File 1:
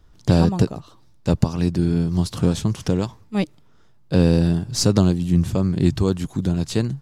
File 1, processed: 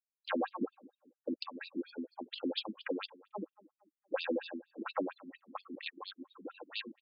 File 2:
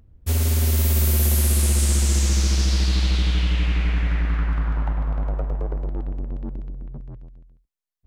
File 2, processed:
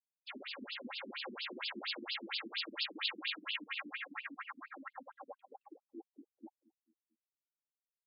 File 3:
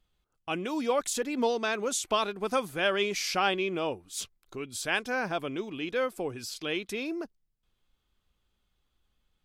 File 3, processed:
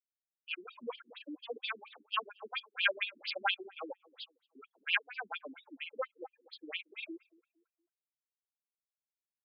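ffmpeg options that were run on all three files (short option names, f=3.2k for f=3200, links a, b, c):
-filter_complex "[0:a]lowpass=9.2k,aderivative,afftfilt=real='re*gte(hypot(re,im),0.00316)':imag='im*gte(hypot(re,im),0.00316)':win_size=1024:overlap=0.75,equalizer=f=140:w=2.9:g=-13,aecho=1:1:3.7:0.62,asplit=2[a][b];[b]asoftclip=type=tanh:threshold=-19dB,volume=-6.5dB[c];[a][c]amix=inputs=2:normalize=0,adynamicsmooth=sensitivity=1.5:basefreq=1.4k,asplit=2[d][e];[e]adelay=221,lowpass=f=1.2k:p=1,volume=-22dB,asplit=2[f][g];[g]adelay=221,lowpass=f=1.2k:p=1,volume=0.41,asplit=2[h][i];[i]adelay=221,lowpass=f=1.2k:p=1,volume=0.41[j];[d][f][h][j]amix=inputs=4:normalize=0,afftfilt=real='re*between(b*sr/1024,260*pow(3700/260,0.5+0.5*sin(2*PI*4.3*pts/sr))/1.41,260*pow(3700/260,0.5+0.5*sin(2*PI*4.3*pts/sr))*1.41)':imag='im*between(b*sr/1024,260*pow(3700/260,0.5+0.5*sin(2*PI*4.3*pts/sr))/1.41,260*pow(3700/260,0.5+0.5*sin(2*PI*4.3*pts/sr))*1.41)':win_size=1024:overlap=0.75,volume=13dB"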